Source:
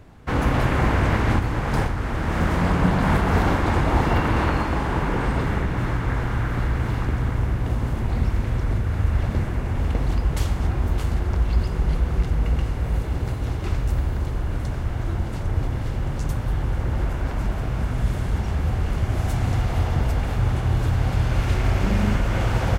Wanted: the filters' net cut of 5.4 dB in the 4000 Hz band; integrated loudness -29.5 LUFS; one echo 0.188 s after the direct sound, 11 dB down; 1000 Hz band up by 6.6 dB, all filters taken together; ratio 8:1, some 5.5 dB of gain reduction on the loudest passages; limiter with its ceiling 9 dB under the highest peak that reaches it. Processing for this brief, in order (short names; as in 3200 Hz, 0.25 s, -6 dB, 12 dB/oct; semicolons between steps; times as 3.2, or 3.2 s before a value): bell 1000 Hz +8.5 dB; bell 4000 Hz -8.5 dB; compressor 8:1, threshold -19 dBFS; limiter -19.5 dBFS; echo 0.188 s -11 dB; gain -0.5 dB